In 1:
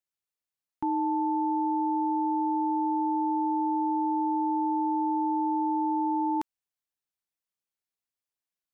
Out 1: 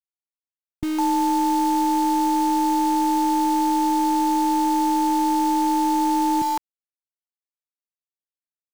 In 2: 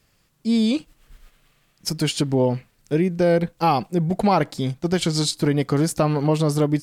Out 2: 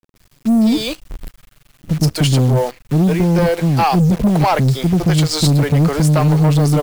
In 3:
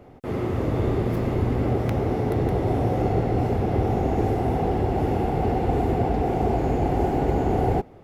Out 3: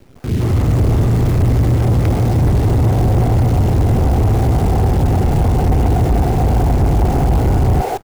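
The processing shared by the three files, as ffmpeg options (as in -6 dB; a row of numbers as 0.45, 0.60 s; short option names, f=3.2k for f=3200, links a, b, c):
-filter_complex "[0:a]acrossover=split=150|2000[a][b][c];[a]dynaudnorm=f=130:g=3:m=10.5dB[d];[d][b][c]amix=inputs=3:normalize=0,acrossover=split=410[e][f];[f]adelay=160[g];[e][g]amix=inputs=2:normalize=0,acrusher=bits=7:dc=4:mix=0:aa=0.000001,asoftclip=type=tanh:threshold=-17.5dB,aeval=exprs='0.133*(cos(1*acos(clip(val(0)/0.133,-1,1)))-cos(1*PI/2))+0.00422*(cos(2*acos(clip(val(0)/0.133,-1,1)))-cos(2*PI/2))+0.00335*(cos(3*acos(clip(val(0)/0.133,-1,1)))-cos(3*PI/2))+0.00168*(cos(6*acos(clip(val(0)/0.133,-1,1)))-cos(6*PI/2))':c=same,volume=8.5dB"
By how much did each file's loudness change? +7.0, +7.0, +9.0 LU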